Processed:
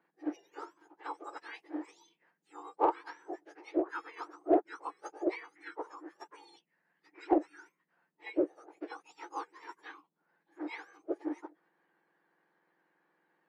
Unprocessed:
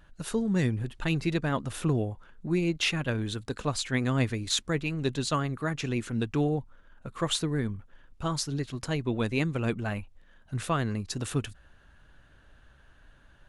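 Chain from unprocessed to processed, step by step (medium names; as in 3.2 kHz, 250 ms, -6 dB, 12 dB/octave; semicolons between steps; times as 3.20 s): spectrum inverted on a logarithmic axis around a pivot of 1.8 kHz; low-pass 2.6 kHz 12 dB/octave; formant shift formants -4 st; in parallel at -7 dB: saturation -24 dBFS, distortion -13 dB; on the sum: upward expansion 1.5:1, over -41 dBFS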